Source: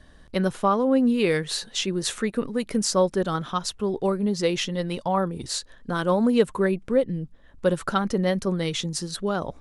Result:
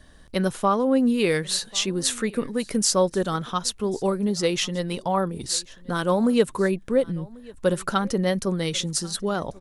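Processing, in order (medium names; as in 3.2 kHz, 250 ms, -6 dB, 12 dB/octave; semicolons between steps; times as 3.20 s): treble shelf 6.1 kHz +8.5 dB; delay 1091 ms -23.5 dB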